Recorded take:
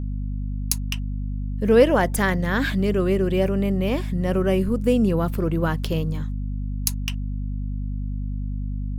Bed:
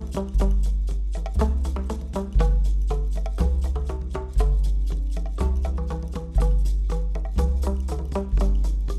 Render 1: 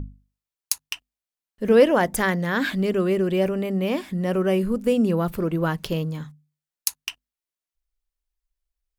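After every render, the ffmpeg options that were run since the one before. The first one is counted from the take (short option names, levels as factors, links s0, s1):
-af "bandreject=f=50:t=h:w=6,bandreject=f=100:t=h:w=6,bandreject=f=150:t=h:w=6,bandreject=f=200:t=h:w=6,bandreject=f=250:t=h:w=6"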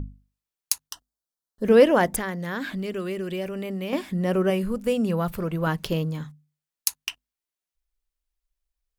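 -filter_complex "[0:a]asettb=1/sr,asplit=3[s0][s1][s2];[s0]atrim=end=0.874[s3];[s1]atrim=start=0.87:end=1.64,asetpts=PTS-STARTPTS,afade=t=in:d=0.004:c=qsin,afade=t=out:st=0.766:d=0.004:c=qsin,asuperstop=centerf=2400:order=4:qfactor=1.1[s4];[s2]atrim=start=1.636[s5];[s3][s4]acrossfade=d=0.004:c1=hsin:c2=qsin[s6];[s6][s5]acrossfade=d=0.004:c1=qsin:c2=hsin,asettb=1/sr,asplit=3[s7][s8][s9];[s7]atrim=end=2.164[s10];[s8]atrim=start=2.16:end=3.93,asetpts=PTS-STARTPTS,afade=t=in:d=0.004:c=qsin,afade=t=out:st=1.766:d=0.004:c=qsin,acrossover=split=1600|4200[s11][s12][s13];[s11]acompressor=threshold=0.0355:ratio=4[s14];[s12]acompressor=threshold=0.01:ratio=4[s15];[s13]acompressor=threshold=0.00316:ratio=4[s16];[s14][s15][s16]amix=inputs=3:normalize=0[s17];[s9]atrim=start=3.926[s18];[s10][s17]acrossfade=d=0.004:c1=hsin:c2=qsin[s19];[s19][s18]acrossfade=d=0.004:c1=qsin:c2=hsin,asettb=1/sr,asplit=3[s20][s21][s22];[s20]atrim=end=4.504[s23];[s21]atrim=start=4.5:end=5.67,asetpts=PTS-STARTPTS,afade=t=in:d=0.004:c=qsin,afade=t=out:st=1.166:d=0.004:c=qsin,equalizer=f=310:w=1.5:g=-8[s24];[s22]atrim=start=5.666[s25];[s23][s24]acrossfade=d=0.004:c1=hsin:c2=qsin[s26];[s26][s25]acrossfade=d=0.004:c1=qsin:c2=hsin"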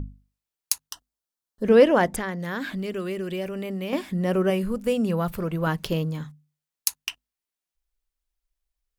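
-filter_complex "[0:a]asettb=1/sr,asplit=3[s0][s1][s2];[s0]atrim=end=1.634[s3];[s1]atrim=start=1.63:end=2.4,asetpts=PTS-STARTPTS,afade=t=in:d=0.004:c=qsin,afade=t=out:st=0.766:d=0.004:c=qsin,highshelf=f=11000:g=-12[s4];[s2]atrim=start=2.396[s5];[s3][s4]acrossfade=d=0.004:c1=hsin:c2=qsin[s6];[s6][s5]acrossfade=d=0.004:c1=qsin:c2=hsin"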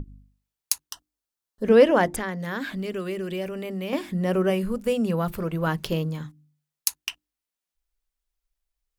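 -af "bandreject=f=50:t=h:w=6,bandreject=f=100:t=h:w=6,bandreject=f=150:t=h:w=6,bandreject=f=200:t=h:w=6,bandreject=f=250:t=h:w=6,bandreject=f=300:t=h:w=6,bandreject=f=350:t=h:w=6"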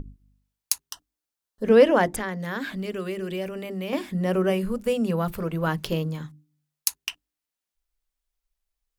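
-af "bandreject=f=50:t=h:w=6,bandreject=f=100:t=h:w=6,bandreject=f=150:t=h:w=6,bandreject=f=200:t=h:w=6,bandreject=f=250:t=h:w=6,bandreject=f=300:t=h:w=6,bandreject=f=350:t=h:w=6,bandreject=f=400:t=h:w=6"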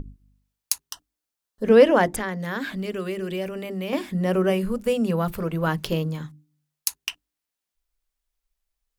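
-af "volume=1.19,alimiter=limit=0.708:level=0:latency=1"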